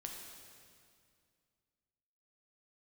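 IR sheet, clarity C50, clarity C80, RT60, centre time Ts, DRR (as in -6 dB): 2.5 dB, 3.5 dB, 2.2 s, 78 ms, 0.5 dB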